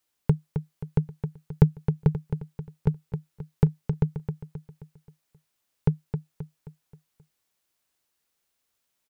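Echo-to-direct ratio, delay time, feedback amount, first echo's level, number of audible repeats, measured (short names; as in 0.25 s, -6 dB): -7.0 dB, 0.265 s, 44%, -8.0 dB, 4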